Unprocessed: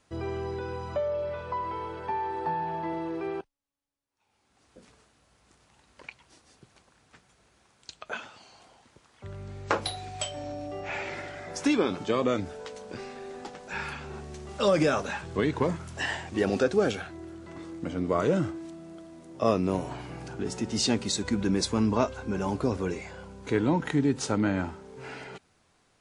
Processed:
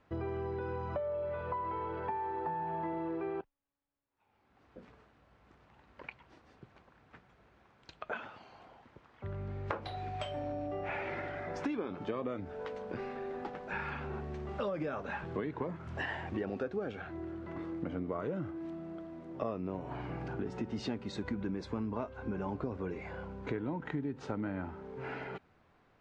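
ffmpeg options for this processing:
-filter_complex "[0:a]asettb=1/sr,asplit=3[a][b][c];[a]atrim=end=15.244[d];[b]atrim=start=15.24:end=15.87,asetpts=PTS-STARTPTS,afade=t=in:d=0.004:c=qsin,afade=t=out:st=0.626:d=0.004:c=qsin,highpass=110[e];[c]atrim=start=15.866[f];[d][e]acrossfade=d=0.004:c1=hsin:c2=qsin[g];[g][f]acrossfade=d=0.004:c1=qsin:c2=hsin,lowpass=2.1k,acompressor=threshold=-35dB:ratio=6,volume=1dB"

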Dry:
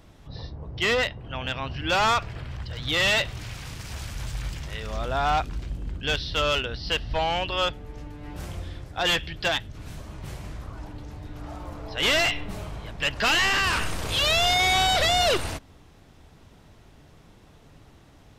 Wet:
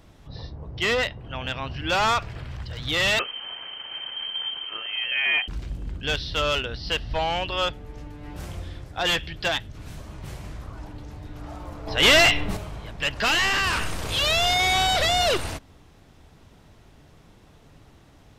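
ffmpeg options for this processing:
-filter_complex "[0:a]asettb=1/sr,asplit=3[a][b][c];[a]atrim=end=3.194[d];[b]atrim=start=3.19:end=5.48,asetpts=PTS-STARTPTS,afade=t=in:d=0.004:c=qsin,afade=t=out:st=2.286:d=0.004:c=qsin,lowpass=f=2.7k:t=q:w=0.5098,lowpass=f=2.7k:t=q:w=0.6013,lowpass=f=2.7k:t=q:w=0.9,lowpass=f=2.7k:t=q:w=2.563,afreqshift=-3200[e];[c]atrim=start=5.476[f];[d][e]acrossfade=d=0.004:c1=hsin:c2=qsin[g];[g][f]acrossfade=d=0.004:c1=qsin:c2=hsin,asettb=1/sr,asplit=3[h][i][j];[h]atrim=end=11.874[k];[i]atrim=start=11.87:end=12.57,asetpts=PTS-STARTPTS,afade=t=in:d=0.004:c=qsin,afade=t=out:st=0.696:d=0.004:c=qsin,acontrast=67[l];[j]atrim=start=12.566[m];[k][l]acrossfade=d=0.004:c1=hsin:c2=qsin[n];[n][m]acrossfade=d=0.004:c1=qsin:c2=hsin"

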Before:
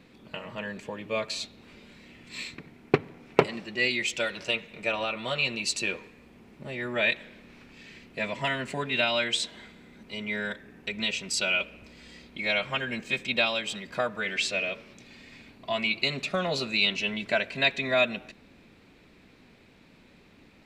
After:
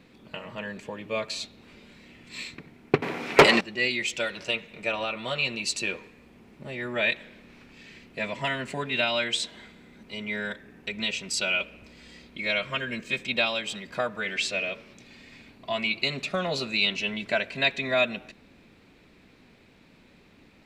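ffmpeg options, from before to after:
-filter_complex "[0:a]asettb=1/sr,asplit=3[a][b][c];[a]atrim=end=3.024[d];[b]atrim=start=3.02:end=3.61,asetpts=PTS-STARTPTS,afade=t=in:d=0.004:c=qsin,afade=t=out:st=0.586:d=0.004:c=qsin,asplit=2[e][f];[f]highpass=f=720:p=1,volume=28dB,asoftclip=type=tanh:threshold=-3dB[g];[e][g]amix=inputs=2:normalize=0,lowpass=f=6.4k:p=1,volume=-6dB[h];[c]atrim=start=3.606[i];[d][h]acrossfade=d=0.004:c1=hsin:c2=qsin[j];[j][i]acrossfade=d=0.004:c1=qsin:c2=hsin,asettb=1/sr,asplit=3[k][l][m];[k]atrim=end=12.344[n];[l]atrim=start=12.34:end=13.18,asetpts=PTS-STARTPTS,afade=t=in:d=0.004:c=qsin,afade=t=out:st=0.836:d=0.004:c=qsin,asuperstop=centerf=810:order=4:qfactor=4[o];[m]atrim=start=13.176[p];[n][o]acrossfade=d=0.004:c1=hsin:c2=qsin[q];[q][p]acrossfade=d=0.004:c1=qsin:c2=hsin"

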